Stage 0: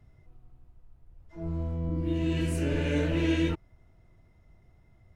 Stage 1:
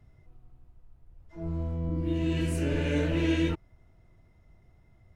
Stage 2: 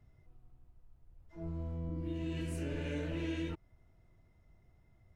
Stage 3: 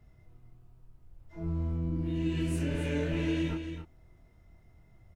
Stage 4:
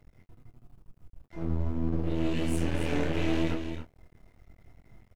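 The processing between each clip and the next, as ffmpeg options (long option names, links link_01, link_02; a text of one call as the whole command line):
ffmpeg -i in.wav -af anull out.wav
ffmpeg -i in.wav -af "acompressor=threshold=-30dB:ratio=2.5,volume=-6dB" out.wav
ffmpeg -i in.wav -filter_complex "[0:a]asplit=2[link_01][link_02];[link_02]adelay=25,volume=-4.5dB[link_03];[link_01][link_03]amix=inputs=2:normalize=0,aecho=1:1:273:0.376,volume=4.5dB" out.wav
ffmpeg -i in.wav -filter_complex "[0:a]aeval=exprs='max(val(0),0)':channel_layout=same,asplit=2[link_01][link_02];[link_02]adelay=21,volume=-11dB[link_03];[link_01][link_03]amix=inputs=2:normalize=0,volume=6dB" out.wav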